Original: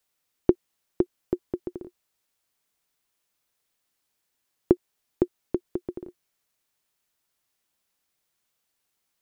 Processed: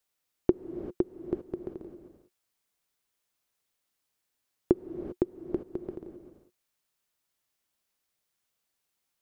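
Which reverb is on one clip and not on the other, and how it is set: gated-style reverb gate 420 ms rising, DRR 8.5 dB; trim -4 dB

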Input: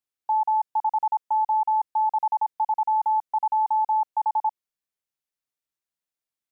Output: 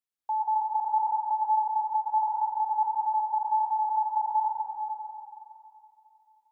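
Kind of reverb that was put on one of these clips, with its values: plate-style reverb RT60 2.8 s, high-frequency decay 0.75×, pre-delay 100 ms, DRR -3.5 dB; trim -6 dB

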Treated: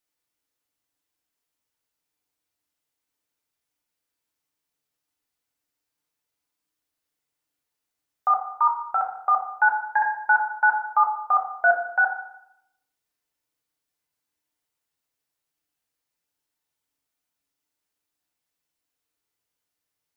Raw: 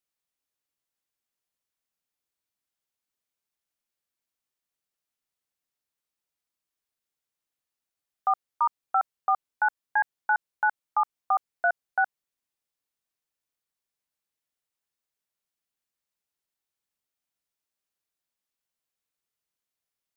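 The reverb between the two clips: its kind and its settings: FDN reverb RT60 0.77 s, low-frequency decay 1.05×, high-frequency decay 0.6×, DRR -0.5 dB; trim +2 dB

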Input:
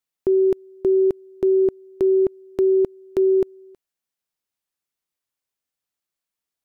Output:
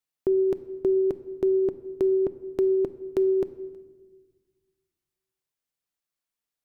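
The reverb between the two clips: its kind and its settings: simulated room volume 1100 m³, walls mixed, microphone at 0.42 m; trim -3 dB

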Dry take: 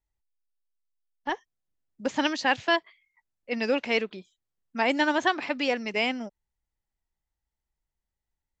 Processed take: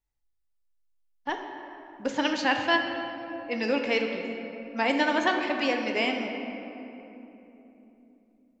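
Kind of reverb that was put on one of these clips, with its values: simulated room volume 170 m³, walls hard, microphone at 0.33 m; trim -1.5 dB

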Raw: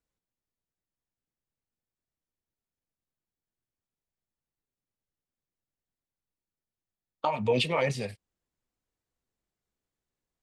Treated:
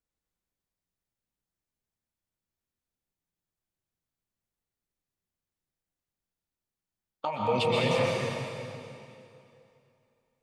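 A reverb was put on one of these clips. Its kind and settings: plate-style reverb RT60 2.7 s, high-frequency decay 0.9×, pre-delay 110 ms, DRR -4 dB; trim -4 dB

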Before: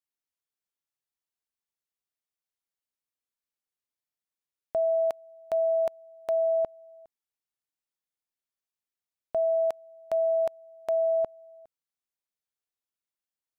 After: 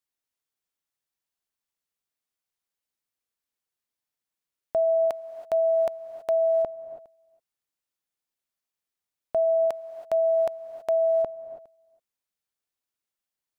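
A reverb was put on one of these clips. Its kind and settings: gated-style reverb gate 350 ms rising, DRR 12 dB; trim +3 dB

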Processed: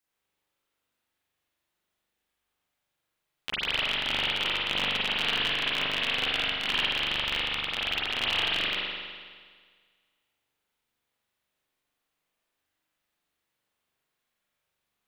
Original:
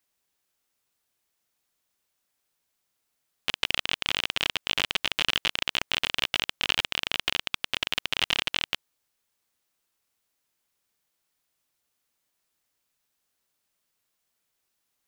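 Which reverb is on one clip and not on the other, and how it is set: spring tank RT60 1.7 s, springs 41 ms, chirp 20 ms, DRR -8.5 dB; trim -7.5 dB

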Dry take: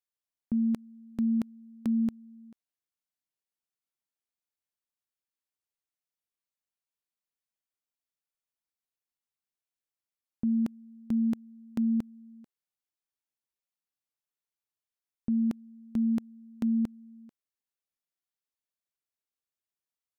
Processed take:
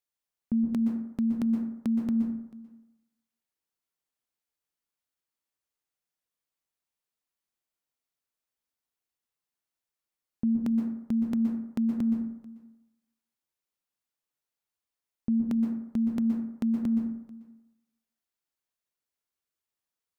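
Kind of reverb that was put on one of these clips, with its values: plate-style reverb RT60 0.89 s, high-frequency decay 0.35×, pre-delay 110 ms, DRR 2.5 dB; trim +1.5 dB

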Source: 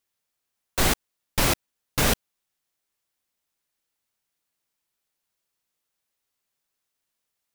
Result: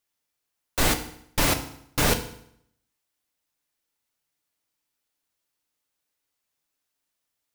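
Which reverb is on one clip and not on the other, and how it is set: FDN reverb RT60 0.69 s, low-frequency decay 1.1×, high-frequency decay 0.9×, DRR 6 dB; trim -1 dB

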